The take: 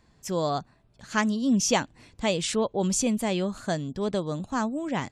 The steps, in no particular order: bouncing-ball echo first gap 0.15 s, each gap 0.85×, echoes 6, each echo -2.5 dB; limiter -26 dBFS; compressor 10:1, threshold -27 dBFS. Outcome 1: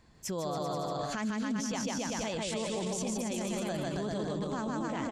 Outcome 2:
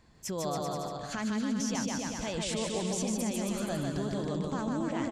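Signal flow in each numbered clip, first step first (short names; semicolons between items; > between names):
bouncing-ball echo > limiter > compressor; limiter > bouncing-ball echo > compressor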